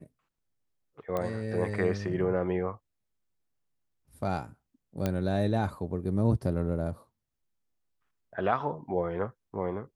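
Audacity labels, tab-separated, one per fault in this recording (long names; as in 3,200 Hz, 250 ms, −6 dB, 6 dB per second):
1.170000	1.170000	click −19 dBFS
5.060000	5.060000	click −15 dBFS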